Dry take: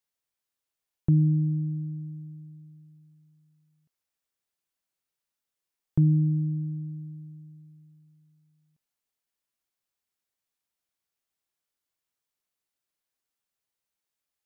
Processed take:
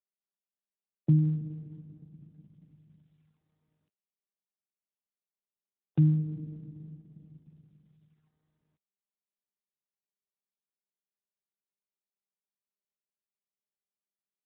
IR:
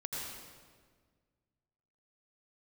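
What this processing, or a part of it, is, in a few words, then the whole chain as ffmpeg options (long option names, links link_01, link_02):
mobile call with aggressive noise cancelling: -filter_complex "[0:a]asplit=3[link_01][link_02][link_03];[link_01]afade=type=out:start_time=6.37:duration=0.02[link_04];[link_02]equalizer=frequency=510:width=0.57:gain=5,afade=type=in:start_time=6.37:duration=0.02,afade=type=out:start_time=7.68:duration=0.02[link_05];[link_03]afade=type=in:start_time=7.68:duration=0.02[link_06];[link_04][link_05][link_06]amix=inputs=3:normalize=0,highpass=frequency=130:width=0.5412,highpass=frequency=130:width=1.3066,afftdn=noise_reduction=15:noise_floor=-41" -ar 8000 -c:a libopencore_amrnb -b:a 12200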